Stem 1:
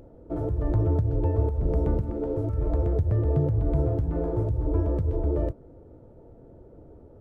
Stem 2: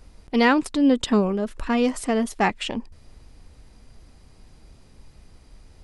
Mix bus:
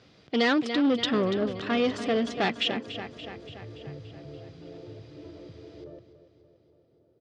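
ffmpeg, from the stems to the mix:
-filter_complex "[0:a]adelay=500,volume=0.178,asplit=2[s0][s1];[s1]volume=0.251[s2];[1:a]volume=1.19,asplit=2[s3][s4];[s4]volume=0.211[s5];[s2][s5]amix=inputs=2:normalize=0,aecho=0:1:287|574|861|1148|1435|1722|2009|2296|2583:1|0.59|0.348|0.205|0.121|0.0715|0.0422|0.0249|0.0147[s6];[s0][s3][s6]amix=inputs=3:normalize=0,equalizer=f=250:w=7.7:g=-4,asoftclip=type=tanh:threshold=0.119,highpass=f=120:w=0.5412,highpass=f=120:w=1.3066,equalizer=f=200:t=q:w=4:g=-4,equalizer=f=920:t=q:w=4:g=-9,equalizer=f=3400:t=q:w=4:g=6,lowpass=f=5300:w=0.5412,lowpass=f=5300:w=1.3066"

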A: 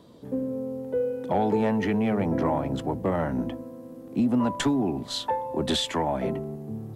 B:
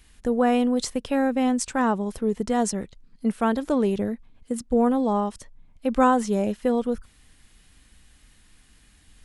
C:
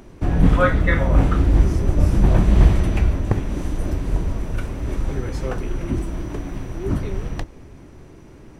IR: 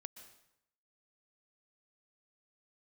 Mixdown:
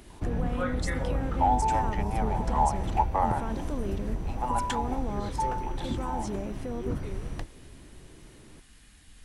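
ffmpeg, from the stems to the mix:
-filter_complex "[0:a]highpass=f=840:t=q:w=8.6,adelay=100,volume=0.708,afade=t=out:st=4.83:d=0.25:silence=0.266073[s0];[1:a]acompressor=threshold=0.0398:ratio=6,alimiter=level_in=1.68:limit=0.0631:level=0:latency=1:release=113,volume=0.596,volume=0.891,asplit=3[s1][s2][s3];[s2]volume=0.531[s4];[2:a]acompressor=threshold=0.141:ratio=6,volume=0.376[s5];[s3]apad=whole_len=311275[s6];[s0][s6]sidechaincompress=threshold=0.00794:ratio=3:attack=16:release=404[s7];[3:a]atrim=start_sample=2205[s8];[s4][s8]afir=irnorm=-1:irlink=0[s9];[s7][s1][s5][s9]amix=inputs=4:normalize=0"

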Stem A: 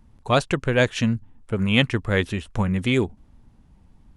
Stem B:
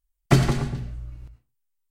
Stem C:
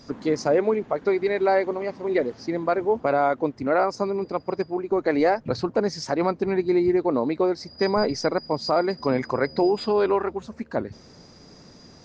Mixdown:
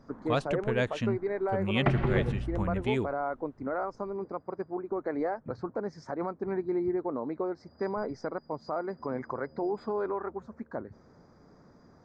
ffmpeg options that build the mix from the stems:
-filter_complex "[0:a]lowpass=f=3300:p=1,volume=0.335[s0];[1:a]lowpass=f=2700:w=0.5412,lowpass=f=2700:w=1.3066,acompressor=threshold=0.0794:ratio=6,adelay=1550,volume=0.891[s1];[2:a]highshelf=f=2100:t=q:w=1.5:g=-13,bandreject=f=2800:w=5.1,alimiter=limit=0.2:level=0:latency=1:release=222,volume=0.398[s2];[s0][s1][s2]amix=inputs=3:normalize=0"

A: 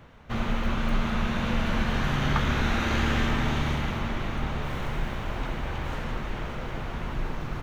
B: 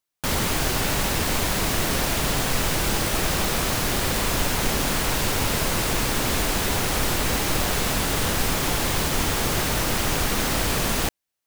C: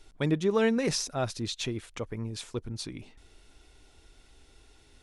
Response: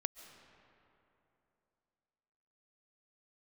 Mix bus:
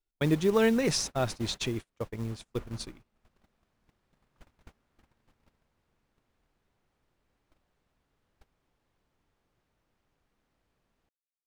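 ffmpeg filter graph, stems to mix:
-filter_complex "[0:a]lowpass=2000,aeval=exprs='val(0)+0.0112*(sin(2*PI*60*n/s)+sin(2*PI*2*60*n/s)/2+sin(2*PI*3*60*n/s)/3+sin(2*PI*4*60*n/s)/4+sin(2*PI*5*60*n/s)/5)':c=same,adelay=2000,volume=0.112[s0];[1:a]lowpass=f=2400:p=1,volume=0.531,afade=t=out:st=1.33:d=0.5:silence=0.251189[s1];[2:a]acrusher=bits=6:mode=log:mix=0:aa=0.000001,volume=1.12,asplit=2[s2][s3];[s3]apad=whole_len=505680[s4];[s1][s4]sidechaincompress=threshold=0.0126:ratio=12:attack=20:release=767[s5];[s0][s5][s2]amix=inputs=3:normalize=0,agate=range=0.0178:threshold=0.02:ratio=16:detection=peak"

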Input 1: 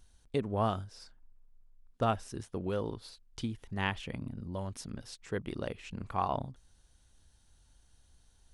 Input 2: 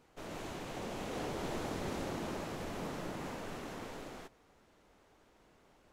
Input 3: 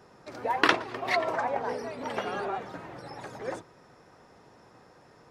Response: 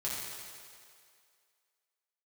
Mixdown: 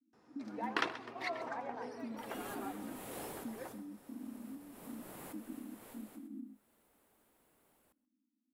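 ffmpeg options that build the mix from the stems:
-filter_complex "[0:a]volume=1.33,asplit=2[s0][s1];[1:a]aexciter=amount=6.2:drive=7.3:freq=8500,adelay=2000,volume=1.68,afade=t=out:st=2.96:d=0.79:silence=0.251189,afade=t=in:st=4.6:d=0.56:silence=0.398107,asplit=2[s2][s3];[s3]volume=0.0841[s4];[2:a]bandreject=f=590:w=12,volume=0.398,asplit=2[s5][s6];[s6]volume=0.631[s7];[s1]apad=whole_len=349429[s8];[s2][s8]sidechaincompress=threshold=0.0178:ratio=6:attack=5.3:release=373[s9];[s0][s5]amix=inputs=2:normalize=0,asuperpass=centerf=260:order=20:qfactor=2.2,acompressor=threshold=0.00891:ratio=6,volume=1[s10];[s4][s7]amix=inputs=2:normalize=0,aecho=0:1:131|262|393:1|0.18|0.0324[s11];[s9][s10][s11]amix=inputs=3:normalize=0,lowshelf=f=86:g=-8.5"

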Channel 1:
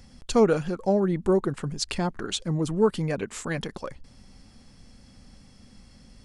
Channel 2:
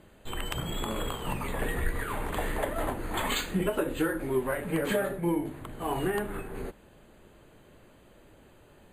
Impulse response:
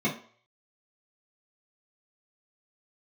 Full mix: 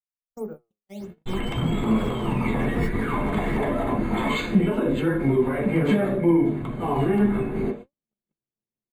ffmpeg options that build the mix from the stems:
-filter_complex "[0:a]lowpass=1100,acrusher=samples=10:mix=1:aa=0.000001:lfo=1:lforange=16:lforate=1.5,volume=0.224,asplit=2[s0][s1];[s1]volume=0.15[s2];[1:a]alimiter=limit=0.0631:level=0:latency=1:release=34,highshelf=f=8100:g=-11.5,acontrast=53,adelay=1000,volume=1.19,asplit=2[s3][s4];[s4]volume=0.447[s5];[2:a]atrim=start_sample=2205[s6];[s2][s5]amix=inputs=2:normalize=0[s7];[s7][s6]afir=irnorm=-1:irlink=0[s8];[s0][s3][s8]amix=inputs=3:normalize=0,agate=range=0.00224:threshold=0.0282:ratio=16:detection=peak,flanger=delay=3.2:depth=6.6:regen=82:speed=0.63:shape=triangular"

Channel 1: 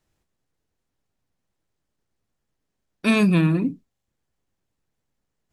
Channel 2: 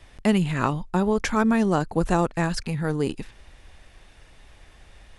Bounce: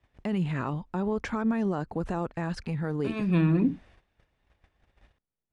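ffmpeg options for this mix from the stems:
-filter_complex "[0:a]acompressor=threshold=0.0794:ratio=10,volume=1.33[s0];[1:a]highpass=41,alimiter=limit=0.168:level=0:latency=1:release=45,acontrast=59,volume=0.299,asplit=2[s1][s2];[s2]apad=whole_len=243514[s3];[s0][s3]sidechaincompress=threshold=0.00891:ratio=8:attack=20:release=220[s4];[s4][s1]amix=inputs=2:normalize=0,aemphasis=mode=reproduction:type=75fm,agate=range=0.158:threshold=0.00224:ratio=16:detection=peak"

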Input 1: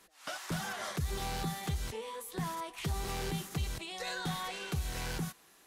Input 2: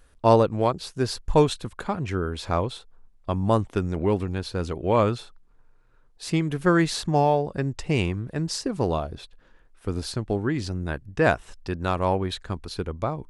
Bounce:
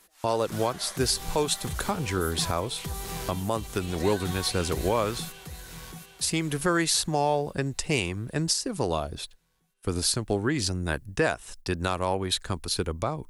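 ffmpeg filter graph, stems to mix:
-filter_complex "[0:a]highshelf=f=7700:g=9.5,volume=1,asplit=2[s0][s1];[s1]volume=0.422[s2];[1:a]aemphasis=mode=production:type=75fm,acrossover=split=320[s3][s4];[s3]acompressor=threshold=0.0398:ratio=6[s5];[s5][s4]amix=inputs=2:normalize=0,agate=range=0.0355:threshold=0.00631:ratio=16:detection=peak,volume=1.26[s6];[s2]aecho=0:1:736|1472|2208|2944|3680|4416|5152:1|0.5|0.25|0.125|0.0625|0.0312|0.0156[s7];[s0][s6][s7]amix=inputs=3:normalize=0,alimiter=limit=0.224:level=0:latency=1:release=403"

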